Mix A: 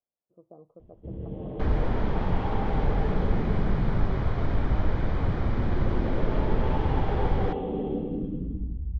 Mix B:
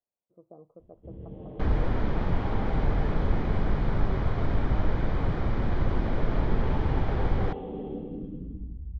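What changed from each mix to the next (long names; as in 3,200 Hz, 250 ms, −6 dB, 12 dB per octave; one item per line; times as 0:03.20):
first sound −6.0 dB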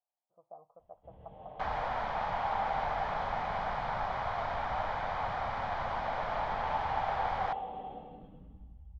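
second sound: add low-shelf EQ 120 Hz −8.5 dB
master: add low shelf with overshoot 520 Hz −13 dB, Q 3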